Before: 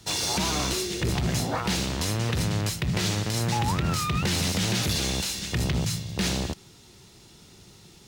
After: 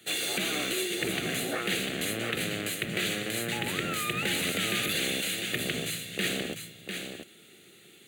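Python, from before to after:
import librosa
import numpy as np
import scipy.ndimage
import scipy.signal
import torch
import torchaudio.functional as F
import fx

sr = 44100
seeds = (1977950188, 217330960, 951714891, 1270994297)

y = scipy.signal.sosfilt(scipy.signal.butter(2, 350.0, 'highpass', fs=sr, output='sos'), x)
y = fx.fixed_phaser(y, sr, hz=2300.0, stages=4)
y = y + 10.0 ** (-6.5 / 20.0) * np.pad(y, (int(699 * sr / 1000.0), 0))[:len(y)]
y = y * 10.0 ** (3.0 / 20.0)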